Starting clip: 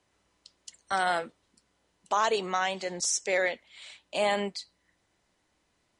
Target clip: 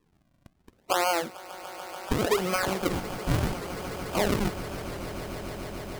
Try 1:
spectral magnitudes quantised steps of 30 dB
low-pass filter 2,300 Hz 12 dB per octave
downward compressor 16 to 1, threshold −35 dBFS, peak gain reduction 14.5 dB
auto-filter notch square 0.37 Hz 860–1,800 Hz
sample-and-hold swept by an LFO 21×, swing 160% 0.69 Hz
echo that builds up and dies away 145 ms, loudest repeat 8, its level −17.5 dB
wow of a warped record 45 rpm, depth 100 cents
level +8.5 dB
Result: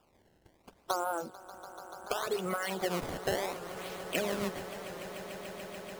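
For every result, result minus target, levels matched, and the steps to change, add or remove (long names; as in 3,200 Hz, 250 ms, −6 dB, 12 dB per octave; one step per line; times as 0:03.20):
downward compressor: peak gain reduction +8.5 dB; sample-and-hold swept by an LFO: distortion −9 dB
change: downward compressor 16 to 1, threshold −26 dBFS, peak gain reduction 6 dB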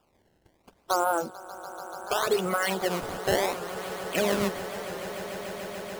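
sample-and-hold swept by an LFO: distortion −10 dB
change: sample-and-hold swept by an LFO 58×, swing 160% 0.69 Hz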